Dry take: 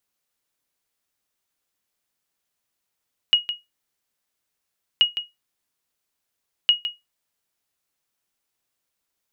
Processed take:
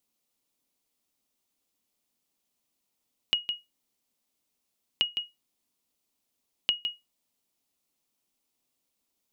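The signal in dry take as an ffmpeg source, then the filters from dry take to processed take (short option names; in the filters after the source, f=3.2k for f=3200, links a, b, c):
-f lavfi -i "aevalsrc='0.422*(sin(2*PI*2890*mod(t,1.68))*exp(-6.91*mod(t,1.68)/0.19)+0.282*sin(2*PI*2890*max(mod(t,1.68)-0.16,0))*exp(-6.91*max(mod(t,1.68)-0.16,0)/0.19))':d=5.04:s=44100"
-af "equalizer=f=100:t=o:w=0.67:g=-4,equalizer=f=250:t=o:w=0.67:g=8,equalizer=f=1.6k:t=o:w=0.67:g=-9,acompressor=threshold=-25dB:ratio=4"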